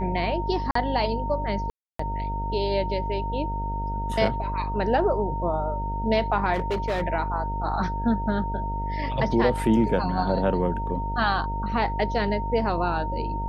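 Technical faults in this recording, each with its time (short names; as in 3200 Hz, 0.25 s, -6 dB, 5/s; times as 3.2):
buzz 50 Hz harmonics 15 -30 dBFS
tone 920 Hz -30 dBFS
0.71–0.75 gap 44 ms
1.7–1.99 gap 0.294 s
6.53–7.03 clipped -21.5 dBFS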